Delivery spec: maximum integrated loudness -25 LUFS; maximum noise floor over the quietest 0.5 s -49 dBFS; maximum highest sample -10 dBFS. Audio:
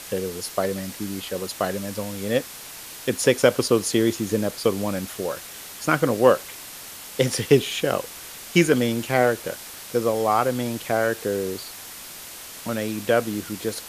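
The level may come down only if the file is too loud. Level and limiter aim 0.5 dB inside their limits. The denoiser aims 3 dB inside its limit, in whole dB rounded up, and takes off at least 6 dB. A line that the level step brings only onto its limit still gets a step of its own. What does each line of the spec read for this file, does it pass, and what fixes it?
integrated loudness -23.5 LUFS: fail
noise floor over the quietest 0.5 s -39 dBFS: fail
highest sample -3.0 dBFS: fail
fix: denoiser 11 dB, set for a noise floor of -39 dBFS; gain -2 dB; limiter -10.5 dBFS

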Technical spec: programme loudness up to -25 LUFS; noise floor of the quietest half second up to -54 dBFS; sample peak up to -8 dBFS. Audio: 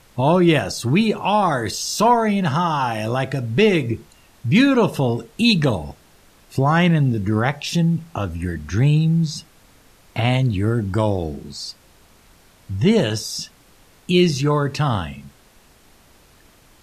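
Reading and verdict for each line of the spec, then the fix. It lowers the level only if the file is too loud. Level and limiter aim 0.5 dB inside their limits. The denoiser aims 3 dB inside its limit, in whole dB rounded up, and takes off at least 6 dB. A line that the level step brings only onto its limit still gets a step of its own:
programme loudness -19.5 LUFS: fail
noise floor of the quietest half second -52 dBFS: fail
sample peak -3.5 dBFS: fail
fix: gain -6 dB

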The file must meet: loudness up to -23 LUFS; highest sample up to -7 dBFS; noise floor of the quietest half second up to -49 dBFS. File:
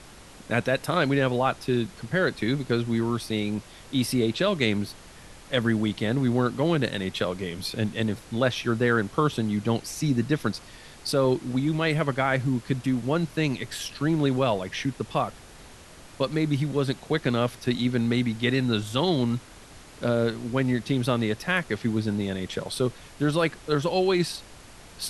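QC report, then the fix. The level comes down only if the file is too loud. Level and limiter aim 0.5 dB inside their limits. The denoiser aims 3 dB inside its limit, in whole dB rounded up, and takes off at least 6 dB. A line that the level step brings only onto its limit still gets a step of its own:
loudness -26.0 LUFS: OK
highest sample -8.5 dBFS: OK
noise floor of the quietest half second -47 dBFS: fail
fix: denoiser 6 dB, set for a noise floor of -47 dBFS

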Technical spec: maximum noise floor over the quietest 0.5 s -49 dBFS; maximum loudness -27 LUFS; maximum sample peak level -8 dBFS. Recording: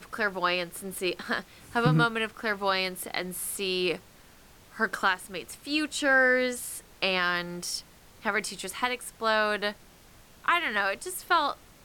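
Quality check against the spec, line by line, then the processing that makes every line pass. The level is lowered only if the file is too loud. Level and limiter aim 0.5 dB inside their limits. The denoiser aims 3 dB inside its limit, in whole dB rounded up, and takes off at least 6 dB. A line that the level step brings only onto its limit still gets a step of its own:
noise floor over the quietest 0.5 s -54 dBFS: OK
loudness -28.0 LUFS: OK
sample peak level -12.5 dBFS: OK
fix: none

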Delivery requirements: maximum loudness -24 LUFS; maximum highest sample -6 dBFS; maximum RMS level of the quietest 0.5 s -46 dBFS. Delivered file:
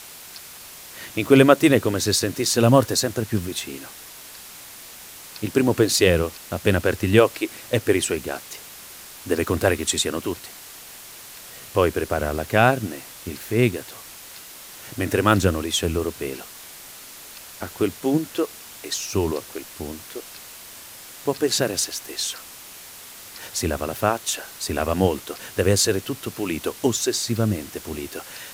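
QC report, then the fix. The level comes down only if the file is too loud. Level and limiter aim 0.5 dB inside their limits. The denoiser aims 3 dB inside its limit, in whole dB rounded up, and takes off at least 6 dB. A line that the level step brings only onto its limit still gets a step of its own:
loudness -22.0 LUFS: fail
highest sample -1.5 dBFS: fail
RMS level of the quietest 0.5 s -41 dBFS: fail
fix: denoiser 6 dB, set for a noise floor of -41 dBFS; gain -2.5 dB; limiter -6.5 dBFS

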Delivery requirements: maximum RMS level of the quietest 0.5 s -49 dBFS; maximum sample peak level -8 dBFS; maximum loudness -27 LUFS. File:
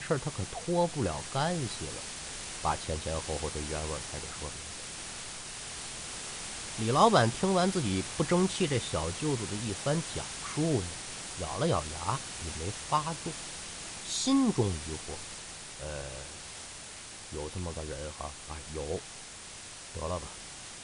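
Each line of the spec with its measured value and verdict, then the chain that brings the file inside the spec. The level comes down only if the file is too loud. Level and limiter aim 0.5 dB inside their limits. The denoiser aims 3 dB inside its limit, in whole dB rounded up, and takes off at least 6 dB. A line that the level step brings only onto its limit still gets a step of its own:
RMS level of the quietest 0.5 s -46 dBFS: fail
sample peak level -9.5 dBFS: OK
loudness -33.0 LUFS: OK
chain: denoiser 6 dB, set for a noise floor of -46 dBFS

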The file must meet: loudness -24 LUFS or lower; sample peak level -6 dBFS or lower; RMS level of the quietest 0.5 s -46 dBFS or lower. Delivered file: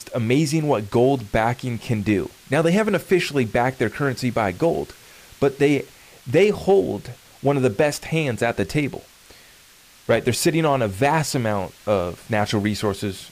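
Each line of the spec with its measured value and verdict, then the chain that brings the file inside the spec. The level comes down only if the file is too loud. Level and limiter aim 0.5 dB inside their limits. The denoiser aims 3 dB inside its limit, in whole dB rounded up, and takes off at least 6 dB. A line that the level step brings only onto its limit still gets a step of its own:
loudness -21.5 LUFS: fail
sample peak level -7.5 dBFS: OK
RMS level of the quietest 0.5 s -50 dBFS: OK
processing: gain -3 dB

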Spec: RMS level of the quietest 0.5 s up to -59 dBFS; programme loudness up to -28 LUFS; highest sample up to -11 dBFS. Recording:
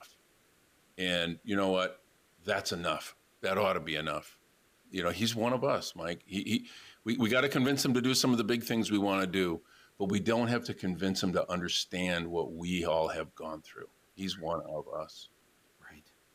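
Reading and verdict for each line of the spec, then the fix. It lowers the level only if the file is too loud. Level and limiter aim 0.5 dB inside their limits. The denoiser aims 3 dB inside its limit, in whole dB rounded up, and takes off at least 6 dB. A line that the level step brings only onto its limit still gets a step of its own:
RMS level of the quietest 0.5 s -67 dBFS: OK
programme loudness -32.0 LUFS: OK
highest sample -17.0 dBFS: OK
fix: none

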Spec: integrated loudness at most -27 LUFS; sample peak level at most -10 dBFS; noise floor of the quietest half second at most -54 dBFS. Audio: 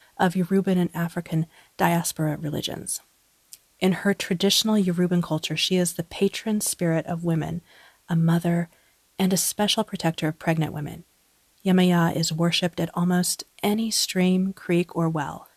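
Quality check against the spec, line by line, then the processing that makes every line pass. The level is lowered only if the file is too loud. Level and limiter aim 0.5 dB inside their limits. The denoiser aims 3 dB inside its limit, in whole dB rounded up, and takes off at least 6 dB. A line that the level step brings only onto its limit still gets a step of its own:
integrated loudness -24.0 LUFS: fail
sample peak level -5.5 dBFS: fail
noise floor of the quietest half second -63 dBFS: OK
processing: gain -3.5 dB; limiter -10.5 dBFS

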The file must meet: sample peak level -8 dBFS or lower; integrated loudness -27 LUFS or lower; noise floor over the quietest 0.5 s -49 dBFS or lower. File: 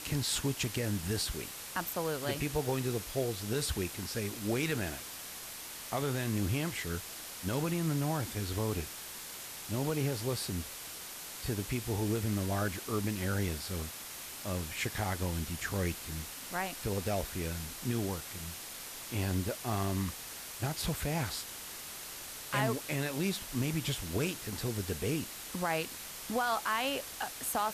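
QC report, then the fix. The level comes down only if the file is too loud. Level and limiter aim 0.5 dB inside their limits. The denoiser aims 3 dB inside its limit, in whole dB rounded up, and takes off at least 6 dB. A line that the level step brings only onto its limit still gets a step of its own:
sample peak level -18.5 dBFS: OK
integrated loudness -35.0 LUFS: OK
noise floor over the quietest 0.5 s -45 dBFS: fail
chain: denoiser 7 dB, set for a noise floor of -45 dBFS

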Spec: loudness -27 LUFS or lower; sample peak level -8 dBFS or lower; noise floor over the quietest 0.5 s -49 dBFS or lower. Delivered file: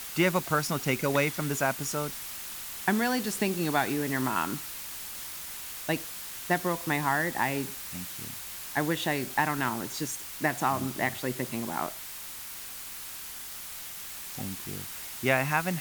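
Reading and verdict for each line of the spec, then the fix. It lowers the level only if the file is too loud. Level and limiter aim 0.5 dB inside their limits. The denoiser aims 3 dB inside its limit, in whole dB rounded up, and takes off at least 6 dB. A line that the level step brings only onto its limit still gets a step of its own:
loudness -30.5 LUFS: OK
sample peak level -10.0 dBFS: OK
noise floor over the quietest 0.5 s -41 dBFS: fail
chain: denoiser 11 dB, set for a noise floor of -41 dBFS

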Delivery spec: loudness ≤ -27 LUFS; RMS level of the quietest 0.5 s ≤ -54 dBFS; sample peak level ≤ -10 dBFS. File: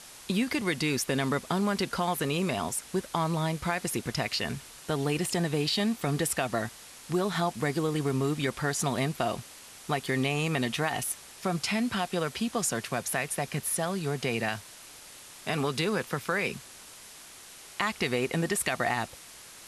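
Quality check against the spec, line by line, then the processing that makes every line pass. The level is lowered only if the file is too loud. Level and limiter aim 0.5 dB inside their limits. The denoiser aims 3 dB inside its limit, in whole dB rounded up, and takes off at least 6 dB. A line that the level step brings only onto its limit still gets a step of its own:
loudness -30.0 LUFS: OK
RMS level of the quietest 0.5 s -49 dBFS: fail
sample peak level -12.5 dBFS: OK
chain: denoiser 8 dB, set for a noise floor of -49 dBFS

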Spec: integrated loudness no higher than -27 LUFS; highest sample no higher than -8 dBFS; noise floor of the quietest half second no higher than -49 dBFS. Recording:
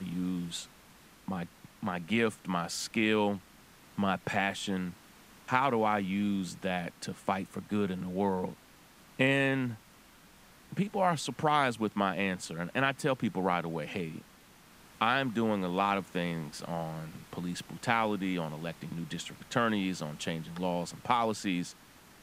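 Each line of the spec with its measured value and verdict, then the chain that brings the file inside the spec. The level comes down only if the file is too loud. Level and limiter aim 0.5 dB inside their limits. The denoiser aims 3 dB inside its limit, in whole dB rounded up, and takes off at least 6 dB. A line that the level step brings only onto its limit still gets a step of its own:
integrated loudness -32.0 LUFS: OK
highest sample -9.0 dBFS: OK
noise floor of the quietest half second -58 dBFS: OK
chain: none

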